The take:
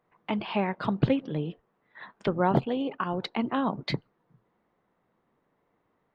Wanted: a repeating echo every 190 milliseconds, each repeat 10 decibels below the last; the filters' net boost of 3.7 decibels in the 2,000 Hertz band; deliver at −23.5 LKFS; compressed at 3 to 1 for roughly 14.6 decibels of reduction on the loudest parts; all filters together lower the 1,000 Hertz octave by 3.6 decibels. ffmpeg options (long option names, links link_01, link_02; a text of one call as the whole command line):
ffmpeg -i in.wav -af "equalizer=frequency=1000:width_type=o:gain=-6,equalizer=frequency=2000:width_type=o:gain=6.5,acompressor=threshold=-39dB:ratio=3,aecho=1:1:190|380|570|760:0.316|0.101|0.0324|0.0104,volume=17dB" out.wav